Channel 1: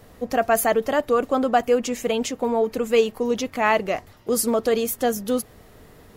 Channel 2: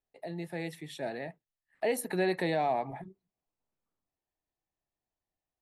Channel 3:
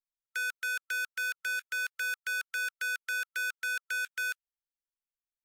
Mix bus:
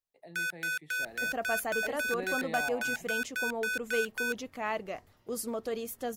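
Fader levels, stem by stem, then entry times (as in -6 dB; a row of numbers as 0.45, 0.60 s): -14.0, -10.5, -0.5 dB; 1.00, 0.00, 0.00 s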